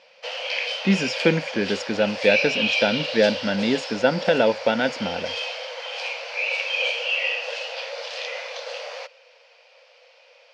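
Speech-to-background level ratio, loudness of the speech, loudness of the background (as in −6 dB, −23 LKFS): 3.5 dB, −23.0 LKFS, −26.5 LKFS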